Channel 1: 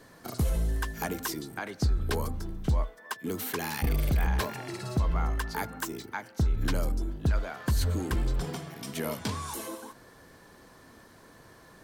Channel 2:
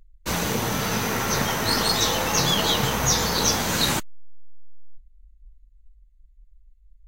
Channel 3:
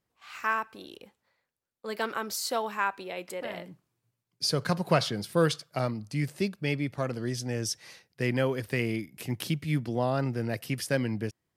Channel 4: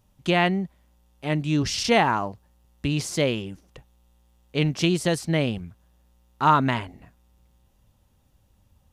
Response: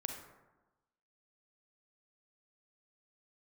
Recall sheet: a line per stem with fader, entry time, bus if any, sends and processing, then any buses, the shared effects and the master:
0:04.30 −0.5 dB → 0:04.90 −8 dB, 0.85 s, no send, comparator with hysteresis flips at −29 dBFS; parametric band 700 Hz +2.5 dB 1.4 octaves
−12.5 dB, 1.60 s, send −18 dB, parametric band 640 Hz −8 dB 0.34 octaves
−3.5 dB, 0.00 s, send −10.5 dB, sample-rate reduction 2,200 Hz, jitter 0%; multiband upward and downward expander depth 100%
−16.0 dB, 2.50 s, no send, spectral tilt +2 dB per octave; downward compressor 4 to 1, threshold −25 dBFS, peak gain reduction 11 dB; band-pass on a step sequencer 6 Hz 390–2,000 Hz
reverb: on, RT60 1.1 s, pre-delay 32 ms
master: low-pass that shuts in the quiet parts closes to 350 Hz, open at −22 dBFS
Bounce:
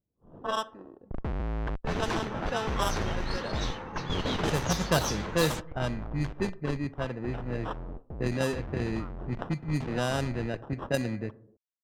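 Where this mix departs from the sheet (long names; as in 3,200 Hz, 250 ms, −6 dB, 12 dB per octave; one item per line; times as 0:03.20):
stem 2: send off
stem 3: missing multiband upward and downward expander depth 100%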